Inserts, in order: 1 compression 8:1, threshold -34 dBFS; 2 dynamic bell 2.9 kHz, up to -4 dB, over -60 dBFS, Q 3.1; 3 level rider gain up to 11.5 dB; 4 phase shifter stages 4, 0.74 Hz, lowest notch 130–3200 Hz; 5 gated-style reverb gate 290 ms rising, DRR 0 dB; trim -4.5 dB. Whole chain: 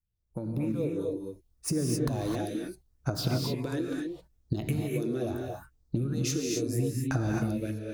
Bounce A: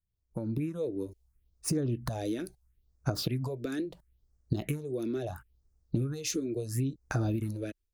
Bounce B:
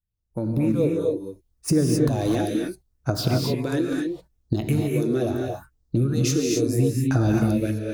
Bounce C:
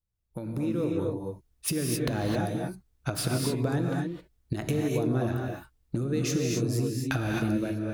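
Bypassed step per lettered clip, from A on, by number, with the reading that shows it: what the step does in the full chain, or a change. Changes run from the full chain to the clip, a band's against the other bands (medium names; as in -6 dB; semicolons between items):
5, momentary loudness spread change -2 LU; 1, momentary loudness spread change +1 LU; 4, crest factor change +1.5 dB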